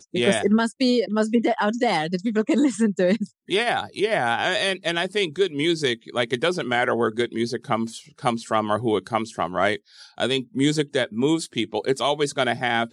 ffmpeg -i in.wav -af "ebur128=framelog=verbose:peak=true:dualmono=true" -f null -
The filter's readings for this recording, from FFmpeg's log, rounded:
Integrated loudness:
  I:         -20.0 LUFS
  Threshold: -30.0 LUFS
Loudness range:
  LRA:         2.7 LU
  Threshold: -40.3 LUFS
  LRA low:   -21.5 LUFS
  LRA high:  -18.9 LUFS
True peak:
  Peak:       -4.3 dBFS